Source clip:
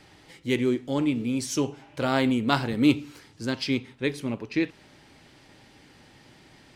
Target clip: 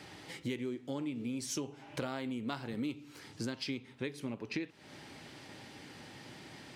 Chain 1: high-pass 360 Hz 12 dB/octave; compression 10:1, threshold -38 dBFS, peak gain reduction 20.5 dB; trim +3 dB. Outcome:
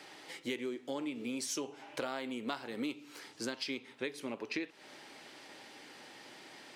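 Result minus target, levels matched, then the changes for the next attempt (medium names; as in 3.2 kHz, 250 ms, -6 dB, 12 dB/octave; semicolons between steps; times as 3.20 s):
125 Hz band -13.0 dB
change: high-pass 95 Hz 12 dB/octave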